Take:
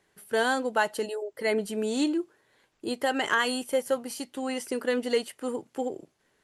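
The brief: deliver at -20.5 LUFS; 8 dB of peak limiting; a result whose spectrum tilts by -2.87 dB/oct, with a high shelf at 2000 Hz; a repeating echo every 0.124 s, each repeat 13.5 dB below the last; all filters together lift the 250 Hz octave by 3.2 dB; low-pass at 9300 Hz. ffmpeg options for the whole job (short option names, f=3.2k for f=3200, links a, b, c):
-af "lowpass=9.3k,equalizer=f=250:t=o:g=3.5,highshelf=f=2k:g=5.5,alimiter=limit=-17dB:level=0:latency=1,aecho=1:1:124|248:0.211|0.0444,volume=8.5dB"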